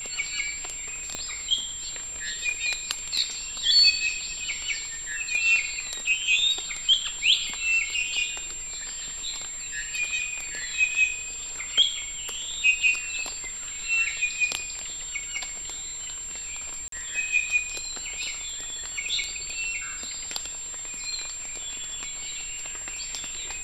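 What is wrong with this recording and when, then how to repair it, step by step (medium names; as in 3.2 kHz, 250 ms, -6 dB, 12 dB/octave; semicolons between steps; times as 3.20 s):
whine 7.4 kHz -33 dBFS
1.15 s: pop -16 dBFS
16.88–16.92 s: dropout 43 ms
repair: de-click; band-stop 7.4 kHz, Q 30; interpolate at 16.88 s, 43 ms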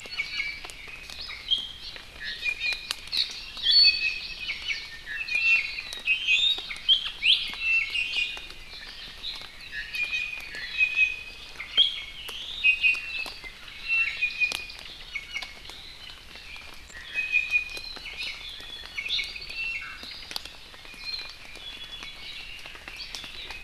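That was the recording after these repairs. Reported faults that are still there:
1.15 s: pop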